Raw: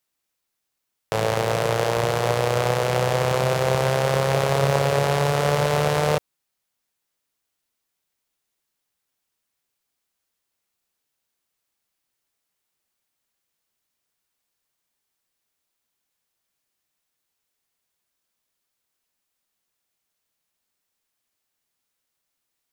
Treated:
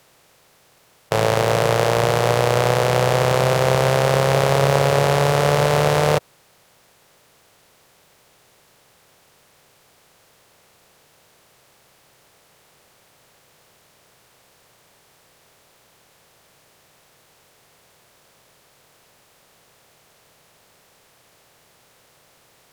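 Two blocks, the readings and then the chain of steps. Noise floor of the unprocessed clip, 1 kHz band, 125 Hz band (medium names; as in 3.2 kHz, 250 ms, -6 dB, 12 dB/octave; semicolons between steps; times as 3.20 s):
-80 dBFS, +4.0 dB, +3.5 dB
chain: spectral levelling over time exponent 0.6; trim +1.5 dB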